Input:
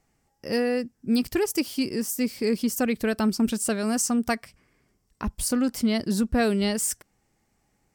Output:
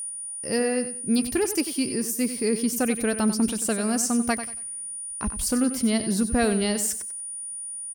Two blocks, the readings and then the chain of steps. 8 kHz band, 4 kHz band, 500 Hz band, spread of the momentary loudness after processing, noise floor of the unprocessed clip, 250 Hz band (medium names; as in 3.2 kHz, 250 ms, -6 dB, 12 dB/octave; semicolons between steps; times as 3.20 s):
+5.0 dB, +0.5 dB, +0.5 dB, 9 LU, -71 dBFS, +0.5 dB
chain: whistle 9.5 kHz -30 dBFS; feedback delay 93 ms, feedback 26%, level -11 dB